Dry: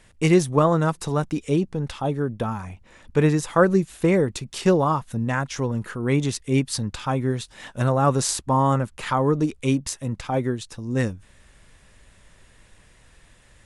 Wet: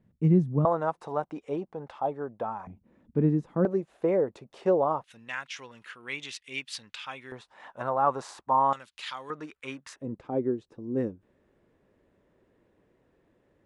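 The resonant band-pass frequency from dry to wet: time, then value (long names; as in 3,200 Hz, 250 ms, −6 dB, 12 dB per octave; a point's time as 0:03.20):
resonant band-pass, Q 1.8
180 Hz
from 0:00.65 750 Hz
from 0:02.67 230 Hz
from 0:03.65 610 Hz
from 0:05.04 2,700 Hz
from 0:07.32 910 Hz
from 0:08.73 3,700 Hz
from 0:09.30 1,500 Hz
from 0:09.96 360 Hz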